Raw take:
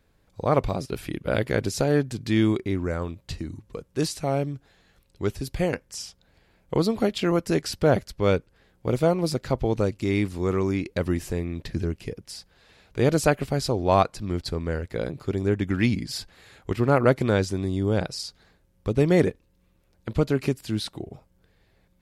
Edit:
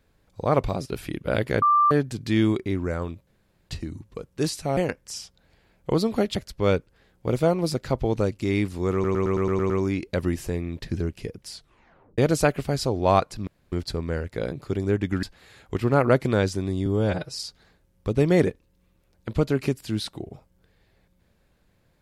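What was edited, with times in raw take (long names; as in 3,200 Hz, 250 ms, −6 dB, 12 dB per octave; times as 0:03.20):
0:01.62–0:01.91: beep over 1,180 Hz −15 dBFS
0:03.27: splice in room tone 0.42 s
0:04.35–0:05.61: remove
0:07.19–0:07.95: remove
0:10.53: stutter 0.11 s, 8 plays
0:12.35: tape stop 0.66 s
0:14.30: splice in room tone 0.25 s
0:15.81–0:16.19: remove
0:17.82–0:18.14: time-stretch 1.5×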